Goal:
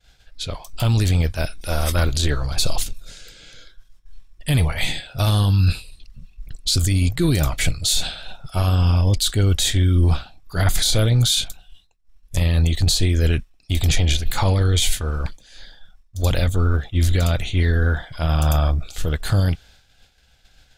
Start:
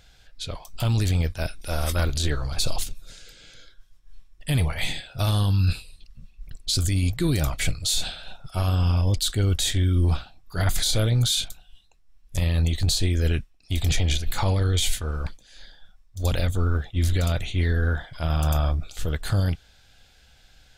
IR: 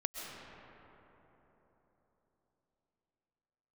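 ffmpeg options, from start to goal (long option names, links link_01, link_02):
-af "agate=range=-33dB:threshold=-48dB:ratio=3:detection=peak,atempo=1,volume=4.5dB"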